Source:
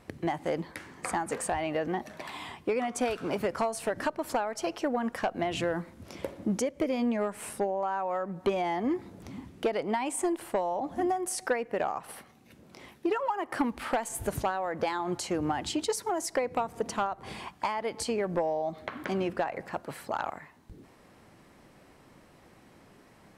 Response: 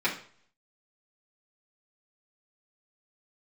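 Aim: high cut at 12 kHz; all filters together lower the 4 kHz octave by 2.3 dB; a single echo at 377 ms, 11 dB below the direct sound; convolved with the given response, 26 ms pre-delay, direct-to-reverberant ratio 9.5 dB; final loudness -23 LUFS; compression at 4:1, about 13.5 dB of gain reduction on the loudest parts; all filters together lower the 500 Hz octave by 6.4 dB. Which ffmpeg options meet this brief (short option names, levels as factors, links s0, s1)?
-filter_complex "[0:a]lowpass=12000,equalizer=f=500:t=o:g=-8.5,equalizer=f=4000:t=o:g=-3,acompressor=threshold=0.00631:ratio=4,aecho=1:1:377:0.282,asplit=2[s0][s1];[1:a]atrim=start_sample=2205,adelay=26[s2];[s1][s2]afir=irnorm=-1:irlink=0,volume=0.0891[s3];[s0][s3]amix=inputs=2:normalize=0,volume=13.3"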